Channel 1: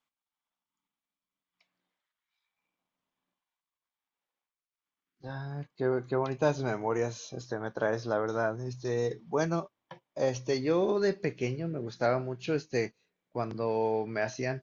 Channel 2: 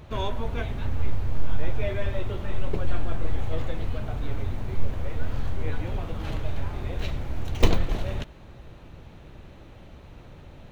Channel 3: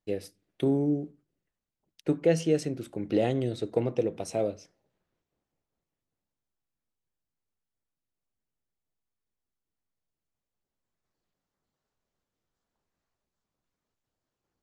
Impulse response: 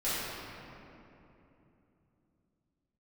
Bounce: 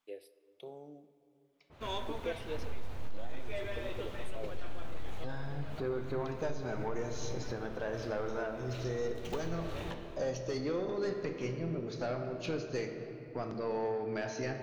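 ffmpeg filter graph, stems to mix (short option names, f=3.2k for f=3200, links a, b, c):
-filter_complex "[0:a]acompressor=threshold=-42dB:ratio=1.5,asoftclip=type=tanh:threshold=-29dB,volume=0.5dB,asplit=3[a][b][c];[b]volume=-13dB[d];[1:a]lowshelf=f=210:g=-11,asoftclip=type=tanh:threshold=-20.5dB,adynamicequalizer=threshold=0.00251:dfrequency=2500:dqfactor=0.7:tfrequency=2500:tqfactor=0.7:attack=5:release=100:ratio=0.375:range=2:mode=boostabove:tftype=highshelf,adelay=1700,volume=-6.5dB,asplit=2[e][f];[f]volume=-17.5dB[g];[2:a]highpass=380,asplit=2[h][i];[i]afreqshift=0.47[j];[h][j]amix=inputs=2:normalize=1,volume=-11.5dB,asplit=2[k][l];[l]volume=-23.5dB[m];[c]apad=whole_len=547344[n];[e][n]sidechaincompress=threshold=-52dB:ratio=8:attack=16:release=138[o];[3:a]atrim=start_sample=2205[p];[d][g][m]amix=inputs=3:normalize=0[q];[q][p]afir=irnorm=-1:irlink=0[r];[a][o][k][r]amix=inputs=4:normalize=0,alimiter=level_in=2dB:limit=-24dB:level=0:latency=1:release=325,volume=-2dB"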